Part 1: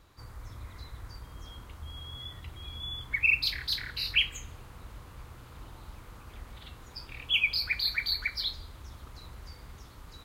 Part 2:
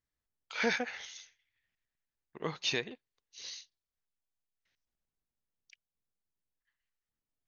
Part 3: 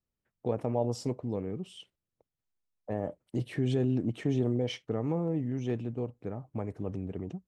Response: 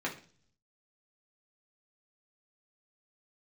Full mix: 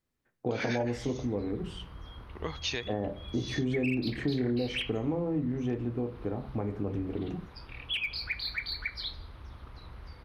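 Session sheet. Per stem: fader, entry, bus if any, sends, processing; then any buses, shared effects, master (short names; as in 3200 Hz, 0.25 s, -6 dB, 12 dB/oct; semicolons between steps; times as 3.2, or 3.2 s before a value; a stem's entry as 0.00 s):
0.0 dB, 0.60 s, no send, wavefolder -20.5 dBFS; running mean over 6 samples
+1.5 dB, 0.00 s, no send, dry
+0.5 dB, 0.00 s, send -3.5 dB, high shelf 5700 Hz -6 dB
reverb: on, RT60 0.45 s, pre-delay 3 ms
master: compressor 2.5:1, threshold -30 dBFS, peak gain reduction 9 dB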